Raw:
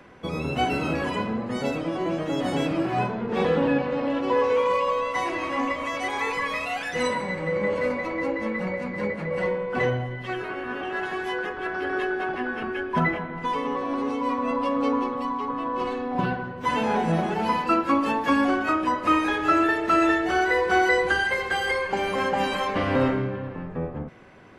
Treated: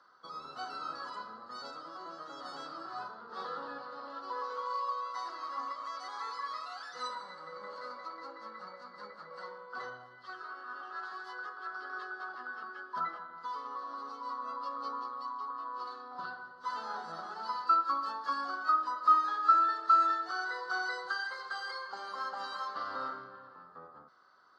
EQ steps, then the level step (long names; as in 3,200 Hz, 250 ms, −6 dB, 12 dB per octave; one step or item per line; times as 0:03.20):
pair of resonant band-passes 2,400 Hz, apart 1.8 octaves
0.0 dB